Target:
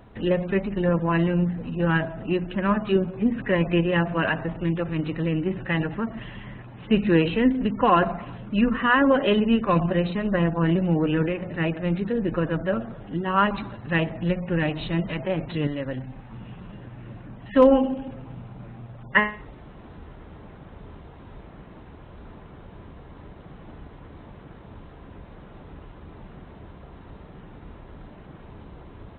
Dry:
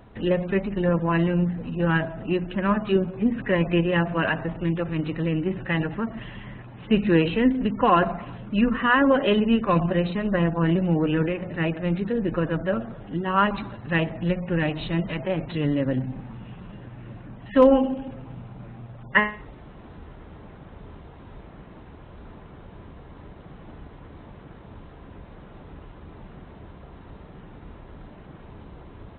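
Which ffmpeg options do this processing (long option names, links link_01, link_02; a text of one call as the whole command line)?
ffmpeg -i in.wav -filter_complex "[0:a]asettb=1/sr,asplit=3[link_01][link_02][link_03];[link_01]atrim=end=15.674[link_04];[link_02]atrim=start=15.67:end=16.32,asetpts=PTS-STARTPTS,afade=type=in:duration=0.004:curve=qsin,afade=type=out:start_time=0.646:duration=0.004:curve=qsin,equalizer=frequency=220:width=0.53:gain=-8.5[link_05];[link_03]atrim=start=16.316[link_06];[link_04][link_05]acrossfade=duration=0.004:curve1=hsin:curve2=qsin[link_07];[link_07][link_06]acrossfade=duration=0.004:curve1=qsin:curve2=hsin" out.wav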